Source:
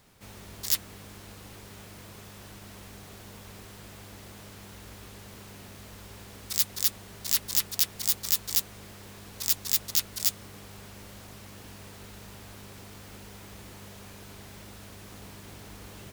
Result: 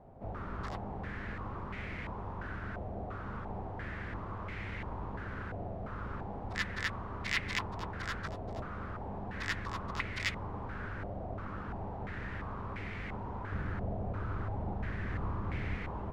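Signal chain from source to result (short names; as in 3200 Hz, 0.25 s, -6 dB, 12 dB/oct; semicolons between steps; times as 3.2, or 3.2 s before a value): octaver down 1 oct, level +3 dB; 13.52–15.76 low shelf 210 Hz +6.5 dB; stepped low-pass 2.9 Hz 700–2100 Hz; gain +2.5 dB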